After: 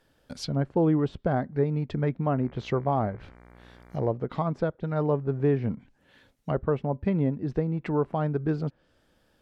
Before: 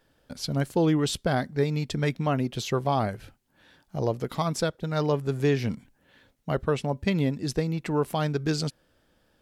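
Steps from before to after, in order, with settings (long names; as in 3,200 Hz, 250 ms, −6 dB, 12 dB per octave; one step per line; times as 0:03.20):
treble cut that deepens with the level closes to 1,200 Hz, closed at −25 dBFS
0:02.31–0:04.09: hum with harmonics 60 Hz, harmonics 39, −52 dBFS −4 dB per octave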